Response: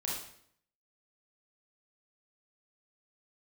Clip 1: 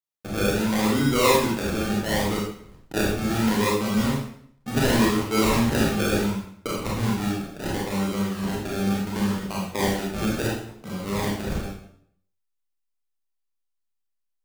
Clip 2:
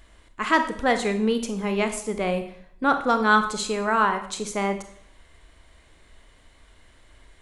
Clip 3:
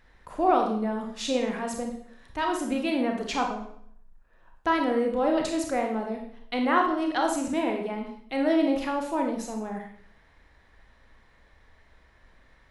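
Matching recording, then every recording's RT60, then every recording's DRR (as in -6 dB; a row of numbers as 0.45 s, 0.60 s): 1; 0.65 s, 0.65 s, 0.65 s; -4.5 dB, 7.5 dB, 2.0 dB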